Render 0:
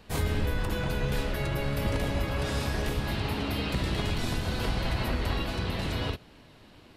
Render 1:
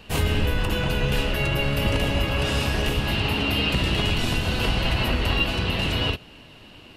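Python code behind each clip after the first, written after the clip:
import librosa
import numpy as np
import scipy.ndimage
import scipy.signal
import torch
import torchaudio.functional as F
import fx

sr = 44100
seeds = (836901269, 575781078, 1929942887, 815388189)

y = fx.peak_eq(x, sr, hz=2800.0, db=13.0, octaves=0.21)
y = y * librosa.db_to_amplitude(5.5)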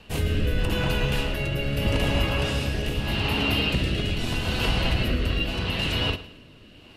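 y = fx.rotary(x, sr, hz=0.8)
y = fx.echo_feedback(y, sr, ms=109, feedback_pct=34, wet_db=-16.0)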